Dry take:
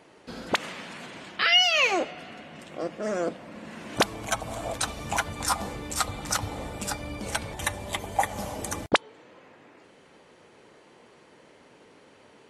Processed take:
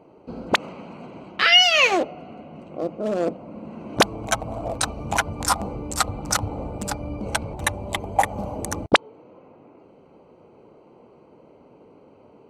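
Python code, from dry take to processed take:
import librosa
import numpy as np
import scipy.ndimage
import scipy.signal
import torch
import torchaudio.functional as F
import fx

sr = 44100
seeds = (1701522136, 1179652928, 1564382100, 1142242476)

y = fx.wiener(x, sr, points=25)
y = y * librosa.db_to_amplitude(6.0)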